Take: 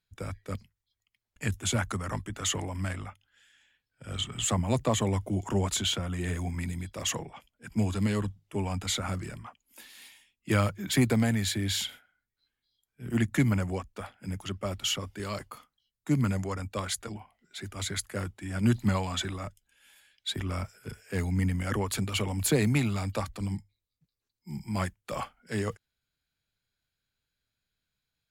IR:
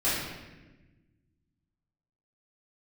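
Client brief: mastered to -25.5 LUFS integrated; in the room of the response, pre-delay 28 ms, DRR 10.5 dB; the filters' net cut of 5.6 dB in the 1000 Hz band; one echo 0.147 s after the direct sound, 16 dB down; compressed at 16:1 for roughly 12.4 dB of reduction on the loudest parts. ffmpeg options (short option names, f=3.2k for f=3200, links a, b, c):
-filter_complex "[0:a]equalizer=f=1k:t=o:g=-7.5,acompressor=threshold=-32dB:ratio=16,aecho=1:1:147:0.158,asplit=2[a][b];[1:a]atrim=start_sample=2205,adelay=28[c];[b][c]afir=irnorm=-1:irlink=0,volume=-22.5dB[d];[a][d]amix=inputs=2:normalize=0,volume=12dB"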